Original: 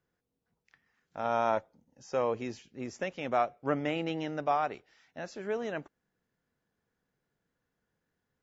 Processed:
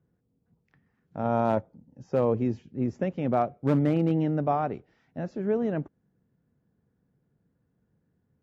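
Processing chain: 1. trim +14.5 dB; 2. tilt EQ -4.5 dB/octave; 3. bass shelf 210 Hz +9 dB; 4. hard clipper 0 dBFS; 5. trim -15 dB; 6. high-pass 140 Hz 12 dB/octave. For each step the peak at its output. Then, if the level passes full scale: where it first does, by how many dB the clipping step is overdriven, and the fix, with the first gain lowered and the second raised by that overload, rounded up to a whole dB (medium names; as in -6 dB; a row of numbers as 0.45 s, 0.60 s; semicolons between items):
-0.5 dBFS, +2.5 dBFS, +6.5 dBFS, 0.0 dBFS, -15.0 dBFS, -12.0 dBFS; step 2, 6.5 dB; step 1 +7.5 dB, step 5 -8 dB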